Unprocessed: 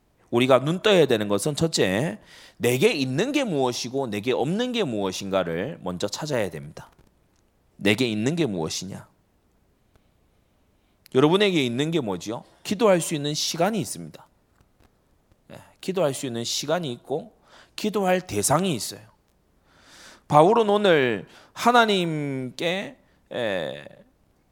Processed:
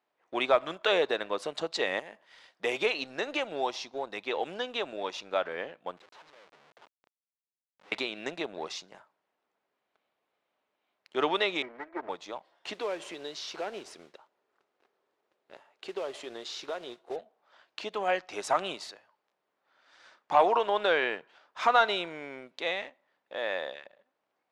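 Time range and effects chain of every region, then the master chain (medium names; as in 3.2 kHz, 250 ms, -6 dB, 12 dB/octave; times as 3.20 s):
1.99–2.64 s: treble shelf 8.1 kHz +10.5 dB + compression 12:1, threshold -28 dBFS
5.97–7.92 s: compression 3:1, threshold -40 dBFS + Schmitt trigger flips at -44.5 dBFS
11.62–12.09 s: comb filter that takes the minimum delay 3.1 ms + steep low-pass 2.2 kHz 96 dB/octave + three bands expanded up and down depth 40%
12.73–17.16 s: compression 3:1, threshold -28 dBFS + modulation noise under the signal 14 dB + peaking EQ 400 Hz +9 dB 0.54 oct
whole clip: high-pass 620 Hz 12 dB/octave; waveshaping leveller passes 1; low-pass 3.5 kHz 12 dB/octave; trim -6.5 dB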